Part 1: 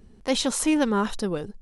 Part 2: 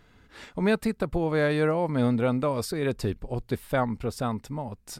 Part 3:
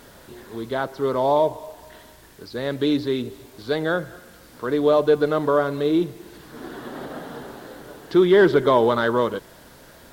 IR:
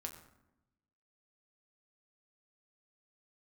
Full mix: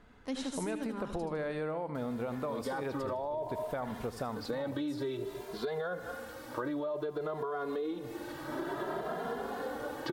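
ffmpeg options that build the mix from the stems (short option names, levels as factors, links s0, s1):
-filter_complex "[0:a]equalizer=f=260:t=o:w=0.25:g=11,volume=0.2,asplit=2[s0][s1];[s1]volume=0.531[s2];[1:a]volume=0.376,asplit=2[s3][s4];[s4]volume=0.335[s5];[2:a]acompressor=threshold=0.0708:ratio=6,asplit=2[s6][s7];[s7]adelay=2.5,afreqshift=0.56[s8];[s6][s8]amix=inputs=2:normalize=1,adelay=1950,volume=0.891[s9];[s3][s9]amix=inputs=2:normalize=0,equalizer=f=780:w=0.46:g=9.5,alimiter=limit=0.1:level=0:latency=1:release=11,volume=1[s10];[s2][s5]amix=inputs=2:normalize=0,aecho=0:1:78|156|234|312|390|468:1|0.42|0.176|0.0741|0.0311|0.0131[s11];[s0][s10][s11]amix=inputs=3:normalize=0,acompressor=threshold=0.0224:ratio=6"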